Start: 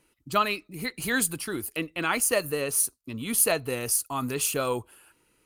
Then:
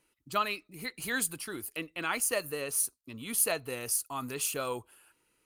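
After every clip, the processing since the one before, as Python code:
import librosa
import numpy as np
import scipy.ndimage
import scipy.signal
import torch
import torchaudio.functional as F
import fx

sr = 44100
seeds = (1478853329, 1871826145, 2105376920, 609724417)

y = fx.low_shelf(x, sr, hz=440.0, db=-5.0)
y = F.gain(torch.from_numpy(y), -5.0).numpy()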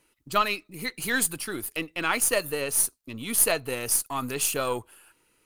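y = np.where(x < 0.0, 10.0 ** (-3.0 / 20.0) * x, x)
y = F.gain(torch.from_numpy(y), 7.5).numpy()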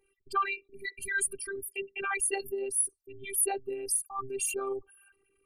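y = fx.envelope_sharpen(x, sr, power=3.0)
y = fx.robotise(y, sr, hz=393.0)
y = F.gain(torch.from_numpy(y), -3.0).numpy()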